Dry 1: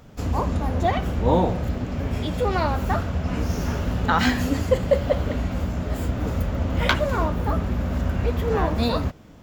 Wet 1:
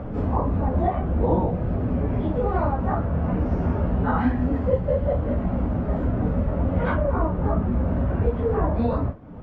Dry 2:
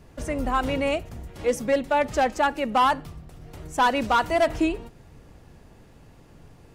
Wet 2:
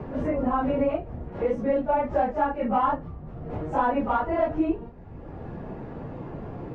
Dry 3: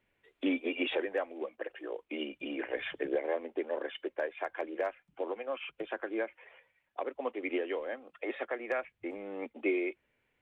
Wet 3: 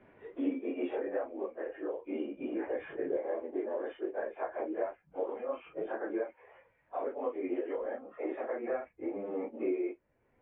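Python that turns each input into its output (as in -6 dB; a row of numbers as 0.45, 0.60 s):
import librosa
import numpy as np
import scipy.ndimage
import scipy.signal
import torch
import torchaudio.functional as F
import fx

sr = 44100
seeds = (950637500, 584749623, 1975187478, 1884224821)

y = fx.phase_scramble(x, sr, seeds[0], window_ms=100)
y = scipy.signal.sosfilt(scipy.signal.butter(2, 1100.0, 'lowpass', fs=sr, output='sos'), y)
y = fx.band_squash(y, sr, depth_pct=70)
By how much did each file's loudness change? 0.0, -2.0, -0.5 LU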